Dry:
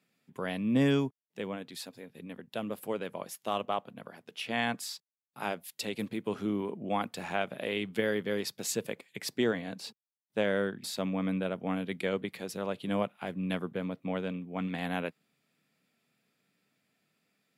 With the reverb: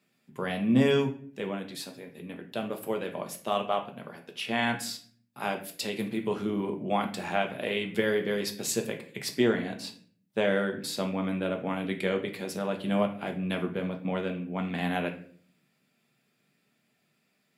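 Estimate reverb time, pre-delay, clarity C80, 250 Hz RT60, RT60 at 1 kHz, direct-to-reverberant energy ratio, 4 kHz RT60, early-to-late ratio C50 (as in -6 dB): 0.50 s, 5 ms, 15.0 dB, 0.75 s, 0.45 s, 3.5 dB, 0.40 s, 11.0 dB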